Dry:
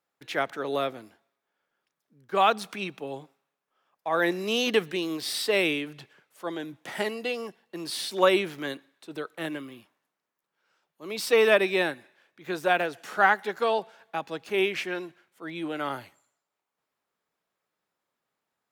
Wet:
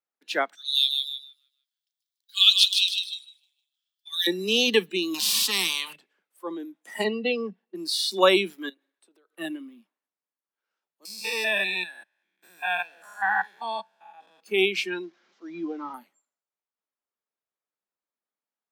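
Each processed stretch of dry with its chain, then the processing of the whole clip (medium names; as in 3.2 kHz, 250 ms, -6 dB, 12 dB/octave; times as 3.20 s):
0.55–4.27 s: Chebyshev high-pass 2.1 kHz, order 3 + resonant high shelf 2.9 kHz +8.5 dB, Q 3 + feedback delay 153 ms, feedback 43%, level -5 dB
5.14–5.96 s: treble shelf 3.3 kHz -9.5 dB + spectrum-flattening compressor 4:1
7.04–7.75 s: low-pass 4.2 kHz + bass shelf 320 Hz +9 dB
8.69–9.36 s: resonant low shelf 250 Hz -6 dB, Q 1.5 + compression 12:1, threshold -46 dBFS
11.05–14.41 s: spectrogram pixelated in time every 200 ms + peaking EQ 260 Hz -11 dB 2.1 oct + comb 1.2 ms, depth 48%
15.03–15.94 s: one-bit delta coder 32 kbps, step -45.5 dBFS + band-stop 2.6 kHz, Q 21
whole clip: spectral noise reduction 16 dB; steep high-pass 180 Hz 72 dB/octave; dynamic bell 4.1 kHz, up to +6 dB, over -45 dBFS, Q 1.1; trim +2 dB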